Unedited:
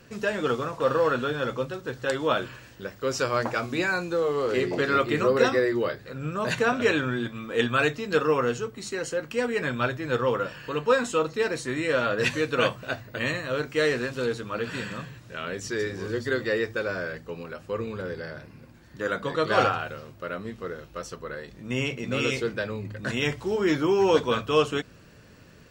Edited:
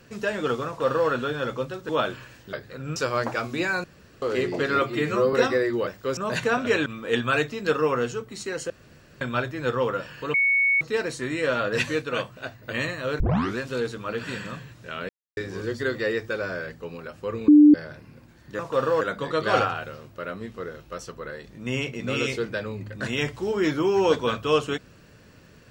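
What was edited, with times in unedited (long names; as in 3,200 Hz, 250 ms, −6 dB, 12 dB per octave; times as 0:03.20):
0:00.67–0:01.09: duplicate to 0:19.05
0:01.89–0:02.21: remove
0:02.85–0:03.15: swap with 0:05.89–0:06.32
0:04.03–0:04.41: fill with room tone
0:05.01–0:05.35: time-stretch 1.5×
0:07.01–0:07.32: remove
0:09.16–0:09.67: fill with room tone
0:10.80–0:11.27: beep over 2,220 Hz −17.5 dBFS
0:12.48–0:13.09: clip gain −4.5 dB
0:13.66: tape start 0.37 s
0:15.55–0:15.83: silence
0:17.94–0:18.20: beep over 297 Hz −8.5 dBFS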